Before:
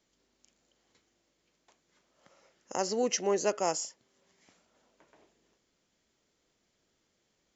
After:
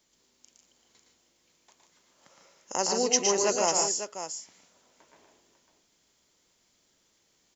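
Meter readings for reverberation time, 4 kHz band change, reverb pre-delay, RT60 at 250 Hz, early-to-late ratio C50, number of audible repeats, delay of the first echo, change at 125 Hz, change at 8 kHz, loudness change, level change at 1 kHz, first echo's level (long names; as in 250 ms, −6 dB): no reverb audible, +9.0 dB, no reverb audible, no reverb audible, no reverb audible, 3, 114 ms, +2.0 dB, can't be measured, +5.0 dB, +5.0 dB, −5.0 dB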